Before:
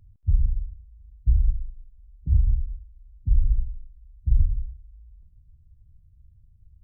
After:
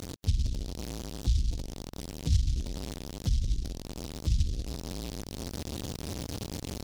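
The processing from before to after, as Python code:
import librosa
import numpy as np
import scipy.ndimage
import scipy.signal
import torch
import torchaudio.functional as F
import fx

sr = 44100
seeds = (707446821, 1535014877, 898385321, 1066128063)

p1 = x + 0.5 * 10.0 ** (-30.5 / 20.0) * np.sign(x)
p2 = fx.highpass(p1, sr, hz=180.0, slope=6)
p3 = fx.peak_eq(p2, sr, hz=250.0, db=2.0, octaves=1.1)
p4 = fx.spec_gate(p3, sr, threshold_db=-25, keep='strong')
p5 = fx.rider(p4, sr, range_db=3, speed_s=0.5)
p6 = p4 + F.gain(torch.from_numpy(p5), 1.0).numpy()
p7 = fx.noise_mod_delay(p6, sr, seeds[0], noise_hz=4500.0, depth_ms=0.2)
y = F.gain(torch.from_numpy(p7), -2.5).numpy()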